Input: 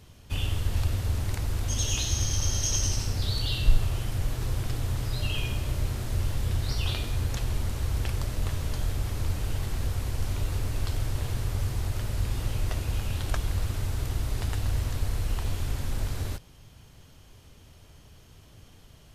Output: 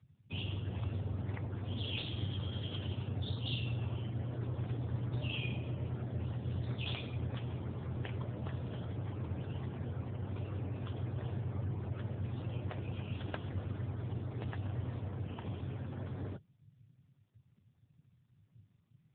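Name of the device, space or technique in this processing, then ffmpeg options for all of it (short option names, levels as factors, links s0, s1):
mobile call with aggressive noise cancelling: -af "highpass=f=100:w=0.5412,highpass=f=100:w=1.3066,afftdn=nr=34:nf=-43,volume=0.75" -ar 8000 -c:a libopencore_amrnb -b:a 7950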